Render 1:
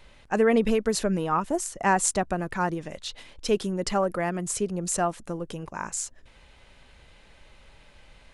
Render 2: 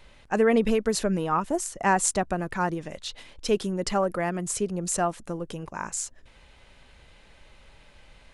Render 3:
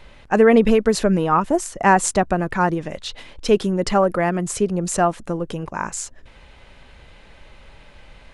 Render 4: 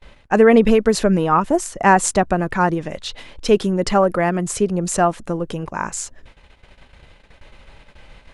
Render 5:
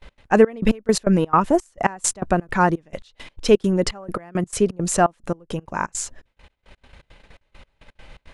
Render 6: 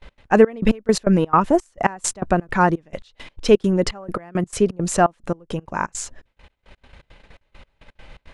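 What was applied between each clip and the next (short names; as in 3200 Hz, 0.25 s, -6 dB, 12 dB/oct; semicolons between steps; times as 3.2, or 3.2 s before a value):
nothing audible
high shelf 4700 Hz -8 dB; gain +8 dB
gate -44 dBFS, range -26 dB; gain +1.5 dB
step gate "x.xxx..x..x.x" 169 bpm -24 dB
high shelf 8400 Hz -7.5 dB; gain +1 dB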